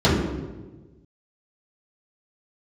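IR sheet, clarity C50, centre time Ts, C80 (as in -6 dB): 1.0 dB, 76 ms, 3.0 dB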